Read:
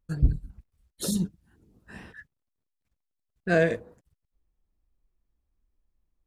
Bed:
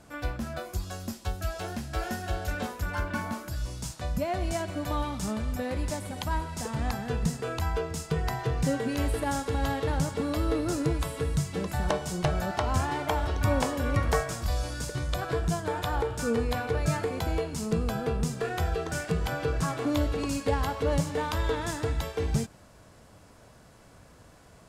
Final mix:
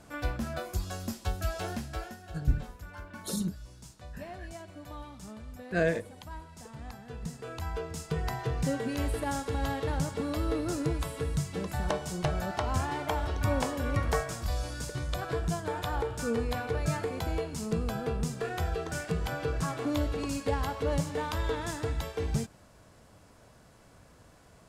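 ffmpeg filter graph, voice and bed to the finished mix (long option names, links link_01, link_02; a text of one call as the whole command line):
ffmpeg -i stem1.wav -i stem2.wav -filter_complex "[0:a]adelay=2250,volume=-5dB[link_01];[1:a]volume=10.5dB,afade=type=out:start_time=1.72:duration=0.43:silence=0.211349,afade=type=in:start_time=7.06:duration=1.15:silence=0.298538[link_02];[link_01][link_02]amix=inputs=2:normalize=0" out.wav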